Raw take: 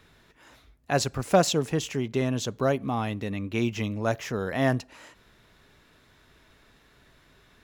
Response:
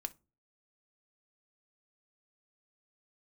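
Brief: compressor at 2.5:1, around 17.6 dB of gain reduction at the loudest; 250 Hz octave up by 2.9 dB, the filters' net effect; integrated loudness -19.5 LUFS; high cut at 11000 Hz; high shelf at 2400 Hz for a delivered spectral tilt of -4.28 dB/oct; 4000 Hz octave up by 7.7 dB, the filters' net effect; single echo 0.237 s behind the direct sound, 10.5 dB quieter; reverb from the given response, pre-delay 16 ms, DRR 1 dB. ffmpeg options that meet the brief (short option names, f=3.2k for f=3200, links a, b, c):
-filter_complex "[0:a]lowpass=11k,equalizer=f=250:t=o:g=3.5,highshelf=f=2.4k:g=5.5,equalizer=f=4k:t=o:g=4.5,acompressor=threshold=-41dB:ratio=2.5,aecho=1:1:237:0.299,asplit=2[a][b];[1:a]atrim=start_sample=2205,adelay=16[c];[b][c]afir=irnorm=-1:irlink=0,volume=1dB[d];[a][d]amix=inputs=2:normalize=0,volume=16dB"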